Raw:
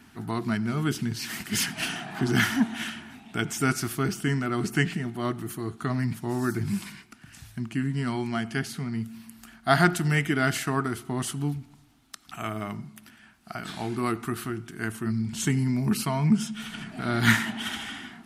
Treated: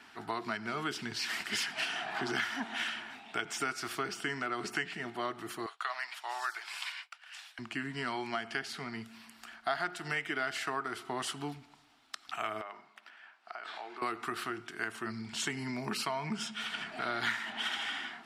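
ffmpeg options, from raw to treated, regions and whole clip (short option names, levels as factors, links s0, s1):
-filter_complex "[0:a]asettb=1/sr,asplit=3[s0][s1][s2];[s0]atrim=end=5.664[s3];[s1]atrim=start=5.66:end=7.59,asetpts=PTS-STARTPTS,afade=t=in:d=0.004:c=qsin,afade=t=out:st=1.926:d=0.004:c=qsin,highpass=f=720:w=0.5412,highpass=f=720:w=1.3066,equalizer=f=3100:w=1.8:g=5.5,agate=range=0.0224:threshold=0.00282:ratio=3:release=100:detection=peak[s4];[s2]atrim=start=7.586[s5];[s3][s4]acrossfade=d=0.004:c1=hsin:c2=qsin[s6];[s6][s5]acrossfade=d=0.004:c1=qsin:c2=hsin,asettb=1/sr,asplit=3[s7][s8][s9];[s7]atrim=end=12.614[s10];[s8]atrim=start=12.61:end=14.02,asetpts=PTS-STARTPTS,afade=t=in:d=0.004:c=qsin,afade=t=out:st=1.406:d=0.004:c=qsin,highpass=500,aemphasis=mode=reproduction:type=75kf,acompressor=threshold=0.00891:ratio=4:attack=3.2:release=140:knee=1:detection=peak[s11];[s9]atrim=start=14.016[s12];[s10][s11]acrossfade=d=0.004:c1=hsin:c2=qsin[s13];[s13][s12]acrossfade=d=0.004:c1=qsin:c2=hsin,acrossover=split=410 6600:gain=0.1 1 0.178[s14][s15][s16];[s14][s15][s16]amix=inputs=3:normalize=0,bandreject=f=6300:w=15,acompressor=threshold=0.02:ratio=5,volume=1.33"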